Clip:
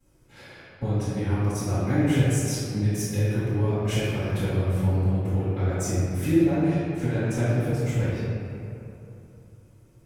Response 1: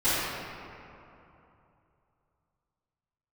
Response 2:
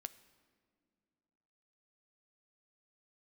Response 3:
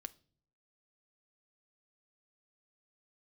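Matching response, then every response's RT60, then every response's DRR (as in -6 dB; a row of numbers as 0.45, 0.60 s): 1; 2.9 s, not exponential, not exponential; -18.0, 11.5, 11.5 dB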